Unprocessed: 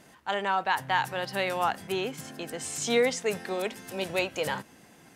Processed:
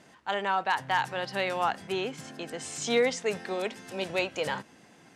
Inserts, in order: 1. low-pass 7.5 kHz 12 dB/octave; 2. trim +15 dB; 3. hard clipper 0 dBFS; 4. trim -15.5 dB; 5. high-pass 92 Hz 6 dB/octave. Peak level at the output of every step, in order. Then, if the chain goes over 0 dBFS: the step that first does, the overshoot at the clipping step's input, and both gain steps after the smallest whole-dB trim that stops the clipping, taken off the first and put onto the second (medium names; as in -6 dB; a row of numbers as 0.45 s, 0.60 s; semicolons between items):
-12.0 dBFS, +3.0 dBFS, 0.0 dBFS, -15.5 dBFS, -15.0 dBFS; step 2, 3.0 dB; step 2 +12 dB, step 4 -12.5 dB